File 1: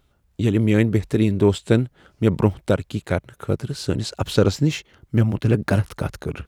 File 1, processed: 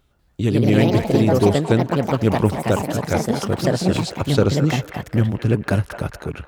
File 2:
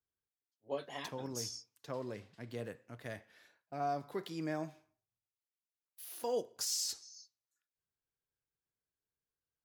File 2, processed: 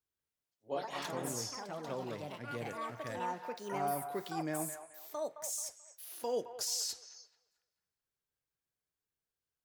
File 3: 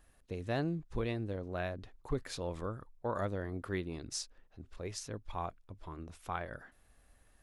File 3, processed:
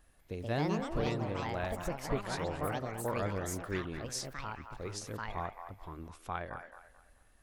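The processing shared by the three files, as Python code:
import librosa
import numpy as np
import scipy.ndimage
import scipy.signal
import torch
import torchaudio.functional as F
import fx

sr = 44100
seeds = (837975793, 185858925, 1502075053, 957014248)

y = fx.echo_pitch(x, sr, ms=192, semitones=4, count=3, db_per_echo=-3.0)
y = fx.echo_wet_bandpass(y, sr, ms=217, feedback_pct=31, hz=1200.0, wet_db=-8.0)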